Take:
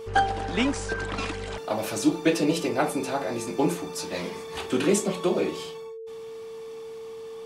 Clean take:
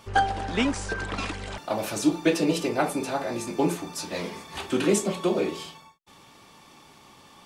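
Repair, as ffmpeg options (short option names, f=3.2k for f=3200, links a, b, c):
-af "bandreject=f=450:w=30"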